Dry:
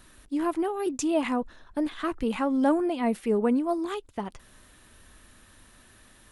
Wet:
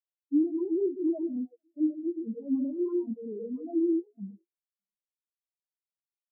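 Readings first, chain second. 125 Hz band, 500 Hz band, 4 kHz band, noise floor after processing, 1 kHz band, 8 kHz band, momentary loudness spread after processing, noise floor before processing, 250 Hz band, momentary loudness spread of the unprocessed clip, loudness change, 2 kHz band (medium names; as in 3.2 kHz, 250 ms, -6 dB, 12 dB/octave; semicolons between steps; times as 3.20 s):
no reading, -4.5 dB, under -40 dB, under -85 dBFS, under -25 dB, under -35 dB, 10 LU, -56 dBFS, -1.5 dB, 10 LU, -3.0 dB, under -40 dB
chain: local Wiener filter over 25 samples; high-order bell 1.9 kHz -15.5 dB; reverb removal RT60 0.63 s; peak limiter -25.5 dBFS, peak gain reduction 11 dB; hum notches 60/120/180/240/300/360/420 Hz; on a send: repeats whose band climbs or falls 147 ms, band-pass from 3.3 kHz, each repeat -1.4 oct, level -8 dB; on the sum: gated-style reverb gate 160 ms rising, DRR 2.5 dB; sine folder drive 7 dB, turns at -20.5 dBFS; high-pass 110 Hz; distance through air 280 m; feedback comb 190 Hz, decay 0.15 s, harmonics odd, mix 40%; spectral contrast expander 4:1; trim +3.5 dB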